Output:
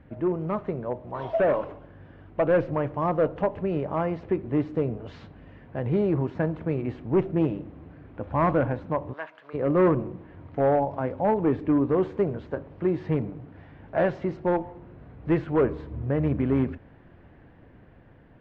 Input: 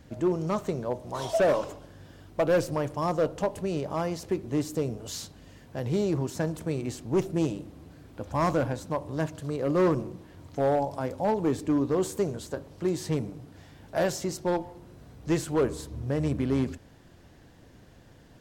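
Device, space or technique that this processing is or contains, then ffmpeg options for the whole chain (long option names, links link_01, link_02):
action camera in a waterproof case: -filter_complex "[0:a]asplit=3[link_01][link_02][link_03];[link_01]afade=type=out:start_time=9.12:duration=0.02[link_04];[link_02]highpass=1000,afade=type=in:start_time=9.12:duration=0.02,afade=type=out:start_time=9.53:duration=0.02[link_05];[link_03]afade=type=in:start_time=9.53:duration=0.02[link_06];[link_04][link_05][link_06]amix=inputs=3:normalize=0,lowpass=frequency=2400:width=0.5412,lowpass=frequency=2400:width=1.3066,dynaudnorm=framelen=920:gausssize=5:maxgain=3dB" -ar 48000 -c:a aac -b:a 64k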